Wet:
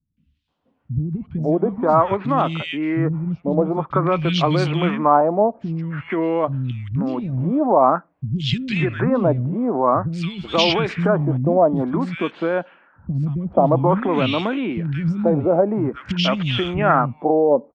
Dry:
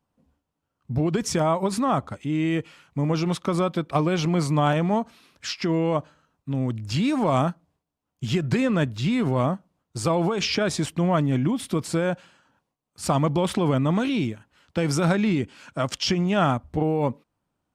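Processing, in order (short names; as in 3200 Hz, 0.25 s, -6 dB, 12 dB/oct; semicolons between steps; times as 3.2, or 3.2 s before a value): three bands offset in time lows, highs, mids 0.17/0.48 s, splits 220/2100 Hz; LFO low-pass sine 0.5 Hz 600–3700 Hz; gain +4.5 dB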